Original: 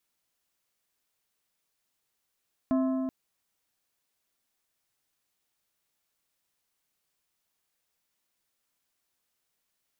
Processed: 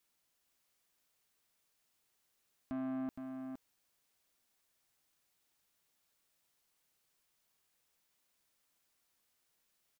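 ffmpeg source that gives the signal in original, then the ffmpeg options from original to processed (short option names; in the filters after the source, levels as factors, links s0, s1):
-f lavfi -i "aevalsrc='0.0794*pow(10,-3*t/3.13)*sin(2*PI*262*t)+0.0316*pow(10,-3*t/2.378)*sin(2*PI*655*t)+0.0126*pow(10,-3*t/2.065)*sin(2*PI*1048*t)+0.00501*pow(10,-3*t/1.931)*sin(2*PI*1310*t)+0.002*pow(10,-3*t/1.785)*sin(2*PI*1703*t)':d=0.38:s=44100"
-af "alimiter=level_in=1.68:limit=0.0631:level=0:latency=1,volume=0.596,asoftclip=type=tanh:threshold=0.0178,aecho=1:1:465:0.501"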